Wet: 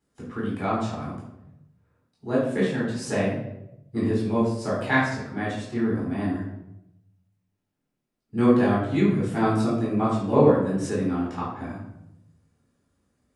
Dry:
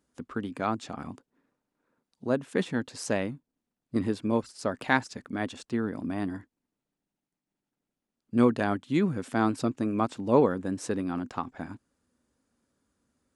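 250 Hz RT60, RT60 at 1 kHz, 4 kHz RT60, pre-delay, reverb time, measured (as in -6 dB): 1.2 s, 0.80 s, 0.60 s, 3 ms, 0.85 s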